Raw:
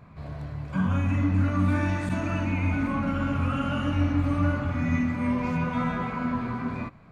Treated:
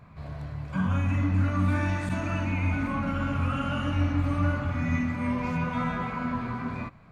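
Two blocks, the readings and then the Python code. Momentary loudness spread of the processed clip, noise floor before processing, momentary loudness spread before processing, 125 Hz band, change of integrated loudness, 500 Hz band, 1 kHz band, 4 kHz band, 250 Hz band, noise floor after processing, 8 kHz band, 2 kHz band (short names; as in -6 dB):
8 LU, -47 dBFS, 7 LU, -0.5 dB, -1.5 dB, -2.0 dB, -0.5 dB, 0.0 dB, -3.0 dB, -48 dBFS, n/a, 0.0 dB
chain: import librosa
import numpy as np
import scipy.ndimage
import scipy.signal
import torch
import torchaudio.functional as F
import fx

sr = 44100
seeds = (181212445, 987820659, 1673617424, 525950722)

y = fx.peak_eq(x, sr, hz=320.0, db=-3.5, octaves=1.7)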